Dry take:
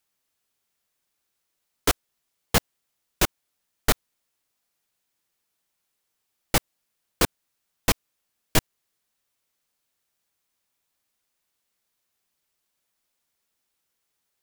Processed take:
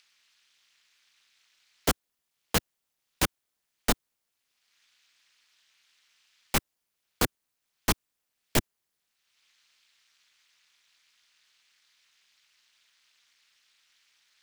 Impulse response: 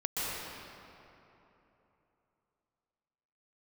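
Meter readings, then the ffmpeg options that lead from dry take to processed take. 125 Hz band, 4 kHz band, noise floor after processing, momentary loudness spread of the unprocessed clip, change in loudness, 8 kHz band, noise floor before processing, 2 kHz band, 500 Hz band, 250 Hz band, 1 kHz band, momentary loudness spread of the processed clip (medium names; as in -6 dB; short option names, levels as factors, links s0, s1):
-4.5 dB, -4.0 dB, -82 dBFS, 4 LU, -4.0 dB, -4.0 dB, -79 dBFS, -4.0 dB, -4.0 dB, -2.5 dB, -4.0 dB, 3 LU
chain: -filter_complex "[0:a]acrossover=split=100|1500|5700[s0][s1][s2][s3];[s2]acompressor=mode=upward:threshold=0.00562:ratio=2.5[s4];[s0][s1][s4][s3]amix=inputs=4:normalize=0,tremolo=f=240:d=0.974"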